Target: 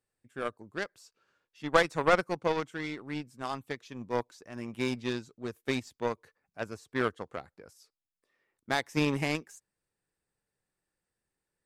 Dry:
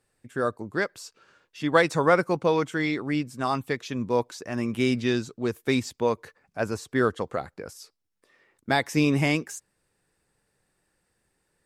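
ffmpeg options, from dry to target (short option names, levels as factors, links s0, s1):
-af "aeval=exprs='0.501*(cos(1*acos(clip(val(0)/0.501,-1,1)))-cos(1*PI/2))+0.0501*(cos(4*acos(clip(val(0)/0.501,-1,1)))-cos(4*PI/2))+0.0126*(cos(6*acos(clip(val(0)/0.501,-1,1)))-cos(6*PI/2))+0.0501*(cos(7*acos(clip(val(0)/0.501,-1,1)))-cos(7*PI/2))':c=same,volume=0.668"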